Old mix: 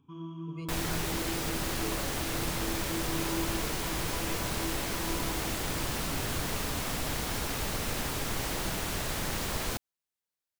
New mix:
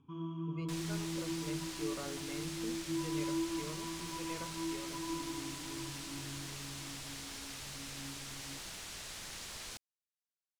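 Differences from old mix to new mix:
second sound: add pre-emphasis filter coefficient 0.9; master: add distance through air 78 m

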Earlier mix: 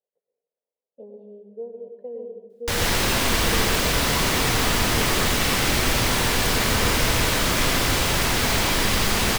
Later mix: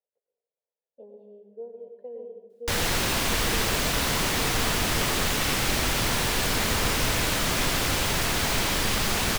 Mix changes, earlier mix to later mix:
speech: add bass shelf 420 Hz -10 dB; background: send -9.5 dB

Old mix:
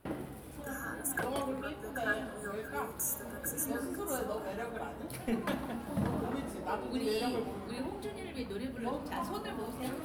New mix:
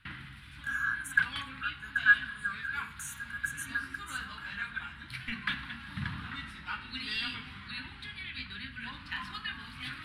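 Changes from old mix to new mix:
speech +3.0 dB; master: add FFT filter 130 Hz 0 dB, 280 Hz -13 dB, 440 Hz -29 dB, 660 Hz -27 dB, 970 Hz -6 dB, 1.6 kHz +10 dB, 3.9 kHz +10 dB, 6.3 kHz -8 dB, 9.2 kHz -8 dB, 14 kHz -22 dB

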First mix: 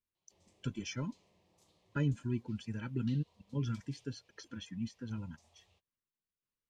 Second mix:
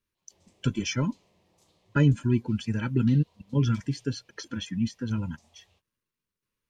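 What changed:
speech +11.5 dB; background +4.5 dB

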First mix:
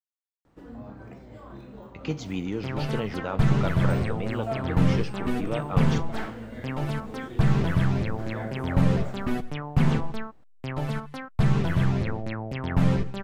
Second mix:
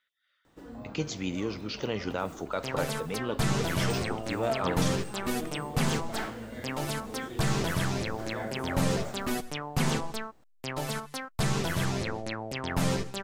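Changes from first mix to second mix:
speech: entry -1.10 s; second sound: add tone controls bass -5 dB, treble +7 dB; master: add tone controls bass -4 dB, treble +8 dB

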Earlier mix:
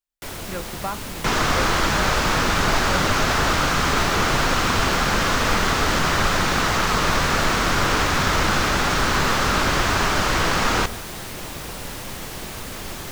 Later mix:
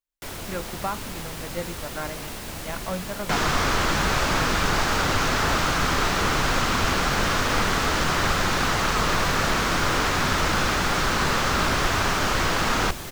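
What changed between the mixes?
second sound: entry +2.05 s; reverb: off

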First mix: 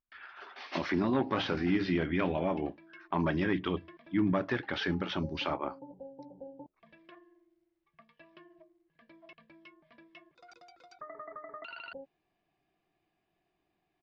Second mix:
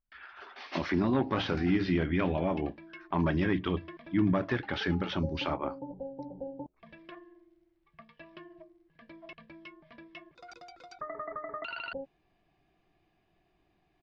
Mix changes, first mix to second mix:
background +6.0 dB; master: add bass shelf 100 Hz +11.5 dB

